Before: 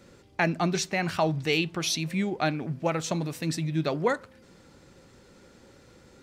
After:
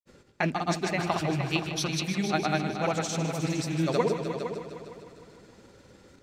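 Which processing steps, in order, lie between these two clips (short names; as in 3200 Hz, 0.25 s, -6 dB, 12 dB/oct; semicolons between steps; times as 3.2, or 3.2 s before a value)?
rattling part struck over -30 dBFS, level -32 dBFS; gate with hold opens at -45 dBFS; grains, pitch spread up and down by 0 st; on a send: multi-head echo 0.153 s, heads all three, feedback 43%, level -11.5 dB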